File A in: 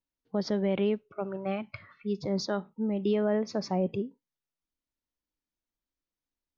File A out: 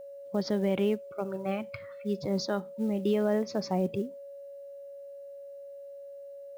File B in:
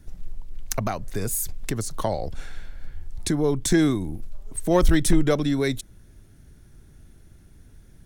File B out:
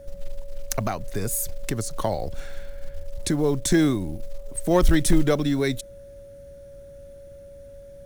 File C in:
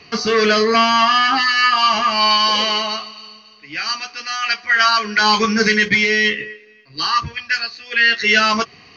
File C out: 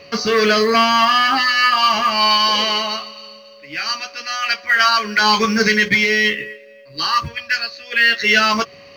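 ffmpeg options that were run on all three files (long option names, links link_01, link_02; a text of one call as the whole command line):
ffmpeg -i in.wav -af "aeval=exprs='val(0)+0.00794*sin(2*PI*560*n/s)':channel_layout=same,acrusher=bits=8:mode=log:mix=0:aa=0.000001" out.wav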